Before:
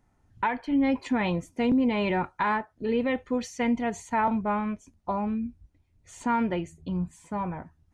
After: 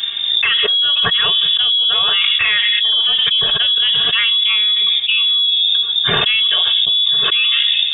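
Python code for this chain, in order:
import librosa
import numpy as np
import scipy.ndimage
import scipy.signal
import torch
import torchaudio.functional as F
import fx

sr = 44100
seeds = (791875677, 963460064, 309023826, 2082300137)

y = fx.peak_eq(x, sr, hz=990.0, db=-5.5, octaves=1.3)
y = y + 0.79 * np.pad(y, (int(4.1 * sr / 1000.0), 0))[:len(y)]
y = fx.rev_fdn(y, sr, rt60_s=0.94, lf_ratio=1.3, hf_ratio=0.4, size_ms=60.0, drr_db=16.5)
y = fx.freq_invert(y, sr, carrier_hz=3600)
y = fx.env_flatten(y, sr, amount_pct=100)
y = F.gain(torch.from_numpy(y), 1.5).numpy()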